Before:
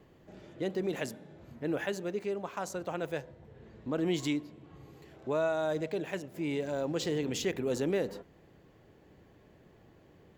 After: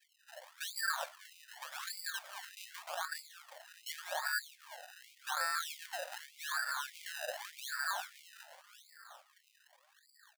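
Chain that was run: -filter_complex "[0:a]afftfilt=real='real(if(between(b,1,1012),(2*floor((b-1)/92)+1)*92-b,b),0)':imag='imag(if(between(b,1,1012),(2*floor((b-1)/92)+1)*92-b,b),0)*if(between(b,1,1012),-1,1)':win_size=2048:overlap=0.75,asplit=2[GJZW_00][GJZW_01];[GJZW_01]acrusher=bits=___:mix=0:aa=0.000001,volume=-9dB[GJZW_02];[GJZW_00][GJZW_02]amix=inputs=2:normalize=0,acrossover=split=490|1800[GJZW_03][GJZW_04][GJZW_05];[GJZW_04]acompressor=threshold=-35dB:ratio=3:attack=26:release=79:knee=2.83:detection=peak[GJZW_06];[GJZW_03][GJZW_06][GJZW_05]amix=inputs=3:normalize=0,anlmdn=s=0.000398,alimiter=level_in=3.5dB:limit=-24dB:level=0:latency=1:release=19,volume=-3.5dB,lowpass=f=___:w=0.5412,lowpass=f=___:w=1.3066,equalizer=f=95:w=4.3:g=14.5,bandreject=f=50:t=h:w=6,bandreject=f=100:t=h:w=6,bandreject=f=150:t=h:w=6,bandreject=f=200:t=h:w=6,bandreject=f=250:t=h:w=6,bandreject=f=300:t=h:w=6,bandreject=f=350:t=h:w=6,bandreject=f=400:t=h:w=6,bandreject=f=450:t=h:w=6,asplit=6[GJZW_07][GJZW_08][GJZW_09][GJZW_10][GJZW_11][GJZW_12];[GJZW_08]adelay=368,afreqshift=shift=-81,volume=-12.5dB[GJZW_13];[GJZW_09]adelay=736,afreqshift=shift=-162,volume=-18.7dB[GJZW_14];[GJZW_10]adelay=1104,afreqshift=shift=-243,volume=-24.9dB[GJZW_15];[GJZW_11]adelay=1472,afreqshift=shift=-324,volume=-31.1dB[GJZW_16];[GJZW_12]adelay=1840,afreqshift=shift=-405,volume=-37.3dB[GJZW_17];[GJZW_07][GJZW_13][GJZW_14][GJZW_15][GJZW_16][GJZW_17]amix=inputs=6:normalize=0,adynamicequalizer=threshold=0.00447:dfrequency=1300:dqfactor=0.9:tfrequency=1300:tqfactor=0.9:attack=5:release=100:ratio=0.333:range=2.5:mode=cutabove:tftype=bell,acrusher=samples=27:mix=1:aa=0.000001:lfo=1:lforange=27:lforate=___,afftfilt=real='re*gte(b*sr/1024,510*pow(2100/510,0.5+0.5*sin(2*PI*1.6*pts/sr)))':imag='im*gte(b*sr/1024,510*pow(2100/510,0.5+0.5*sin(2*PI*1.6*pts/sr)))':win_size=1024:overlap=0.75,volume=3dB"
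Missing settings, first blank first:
3, 4000, 4000, 0.86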